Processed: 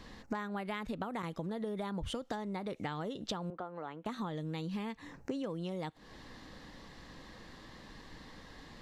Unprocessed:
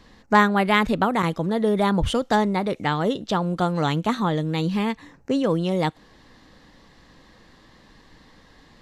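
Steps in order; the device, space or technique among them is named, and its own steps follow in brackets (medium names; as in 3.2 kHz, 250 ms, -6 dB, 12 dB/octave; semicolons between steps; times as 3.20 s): serial compression, leveller first (compression 3:1, threshold -23 dBFS, peak gain reduction 9.5 dB; compression 6:1, threshold -36 dBFS, peak gain reduction 16 dB); 3.50–4.06 s: three-band isolator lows -15 dB, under 320 Hz, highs -23 dB, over 2.2 kHz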